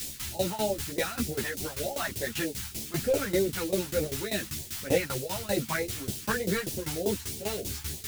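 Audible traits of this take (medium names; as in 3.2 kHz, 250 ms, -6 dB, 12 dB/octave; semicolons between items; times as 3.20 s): a quantiser's noise floor 8-bit, dither triangular; phasing stages 2, 3.3 Hz, lowest notch 460–1300 Hz; tremolo saw down 5.1 Hz, depth 90%; a shimmering, thickened sound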